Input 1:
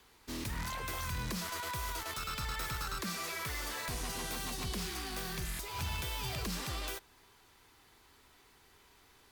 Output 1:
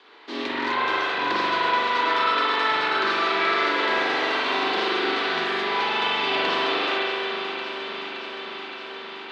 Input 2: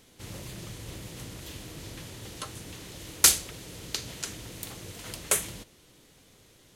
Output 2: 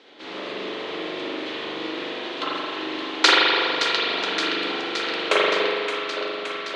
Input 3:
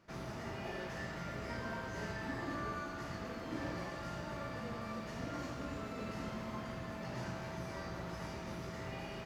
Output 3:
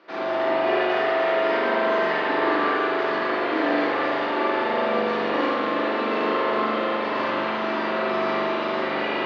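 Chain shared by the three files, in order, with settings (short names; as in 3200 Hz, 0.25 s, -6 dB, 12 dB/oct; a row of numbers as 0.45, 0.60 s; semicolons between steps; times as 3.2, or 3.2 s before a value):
Chebyshev band-pass 310–4000 Hz, order 3; on a send: echo with dull and thin repeats by turns 0.285 s, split 970 Hz, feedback 87%, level -7.5 dB; on the sum: spring tank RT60 2.3 s, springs 41 ms, chirp 40 ms, DRR -6.5 dB; match loudness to -23 LUFS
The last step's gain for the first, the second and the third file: +11.0, +9.5, +14.5 dB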